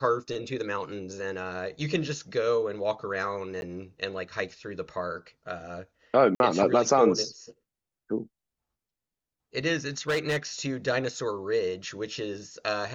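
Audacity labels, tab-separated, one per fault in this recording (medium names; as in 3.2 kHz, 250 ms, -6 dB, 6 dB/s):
3.610000	3.620000	dropout 11 ms
6.350000	6.400000	dropout 51 ms
9.980000	10.370000	clipped -22.5 dBFS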